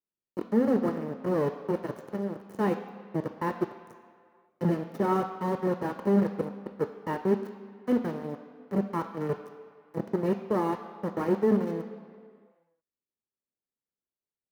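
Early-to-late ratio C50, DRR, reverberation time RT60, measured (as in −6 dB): 10.5 dB, 8.0 dB, 2.1 s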